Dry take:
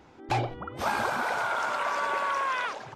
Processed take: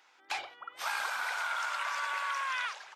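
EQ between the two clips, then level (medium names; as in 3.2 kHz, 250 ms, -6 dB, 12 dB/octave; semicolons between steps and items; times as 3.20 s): high-pass 1.5 kHz 12 dB/octave; 0.0 dB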